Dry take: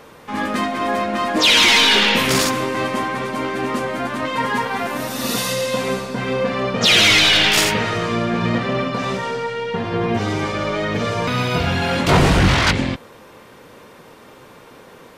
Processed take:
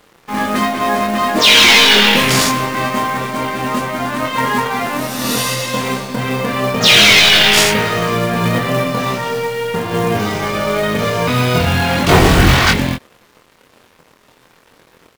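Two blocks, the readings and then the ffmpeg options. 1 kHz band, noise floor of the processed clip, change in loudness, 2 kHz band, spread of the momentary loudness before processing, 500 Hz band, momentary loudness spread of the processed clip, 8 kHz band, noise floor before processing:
+4.5 dB, −51 dBFS, +4.5 dB, +4.5 dB, 13 LU, +4.0 dB, 13 LU, +5.0 dB, −44 dBFS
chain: -filter_complex "[0:a]aeval=exprs='sgn(val(0))*max(abs(val(0))-0.00891,0)':channel_layout=same,asplit=2[link_01][link_02];[link_02]adelay=24,volume=-4dB[link_03];[link_01][link_03]amix=inputs=2:normalize=0,acrusher=bits=4:mode=log:mix=0:aa=0.000001,volume=3.5dB"

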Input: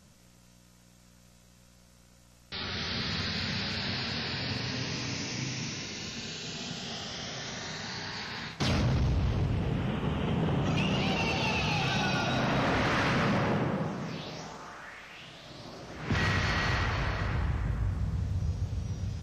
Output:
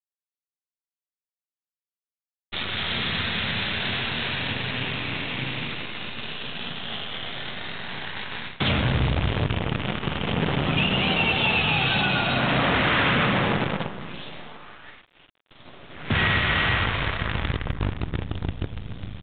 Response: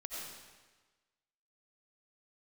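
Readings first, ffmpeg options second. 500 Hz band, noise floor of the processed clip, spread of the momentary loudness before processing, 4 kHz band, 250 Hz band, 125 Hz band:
+5.0 dB, below −85 dBFS, 12 LU, +8.0 dB, +4.0 dB, +3.0 dB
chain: -filter_complex "[0:a]agate=range=-16dB:threshold=-44dB:ratio=16:detection=peak,crystalizer=i=5:c=0,asplit=2[link_01][link_02];[link_02]adelay=139.9,volume=-18dB,highshelf=frequency=4000:gain=-3.15[link_03];[link_01][link_03]amix=inputs=2:normalize=0,acrusher=bits=6:mode=log:mix=0:aa=0.000001,asplit=2[link_04][link_05];[1:a]atrim=start_sample=2205,lowpass=3300[link_06];[link_05][link_06]afir=irnorm=-1:irlink=0,volume=-16dB[link_07];[link_04][link_07]amix=inputs=2:normalize=0,acrusher=bits=5:dc=4:mix=0:aa=0.000001,volume=2.5dB" -ar 8000 -c:a pcm_mulaw

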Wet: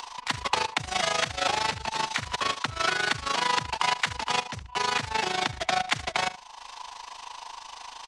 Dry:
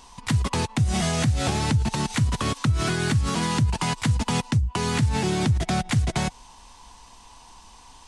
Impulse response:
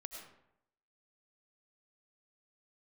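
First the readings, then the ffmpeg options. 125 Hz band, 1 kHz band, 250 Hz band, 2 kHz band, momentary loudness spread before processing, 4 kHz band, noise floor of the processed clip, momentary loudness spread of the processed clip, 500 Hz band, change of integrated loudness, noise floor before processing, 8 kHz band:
−20.0 dB, +3.0 dB, −16.0 dB, +3.5 dB, 3 LU, +2.5 dB, −47 dBFS, 15 LU, −3.0 dB, −3.0 dB, −49 dBFS, −3.5 dB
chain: -filter_complex "[0:a]asplit=2[link_01][link_02];[link_02]aecho=0:1:69|138:0.178|0.032[link_03];[link_01][link_03]amix=inputs=2:normalize=0,tremolo=f=26:d=0.788,acompressor=mode=upward:threshold=-36dB:ratio=2.5,acrossover=split=520 5900:gain=0.0631 1 0.178[link_04][link_05][link_06];[link_04][link_05][link_06]amix=inputs=3:normalize=0,volume=7dB"

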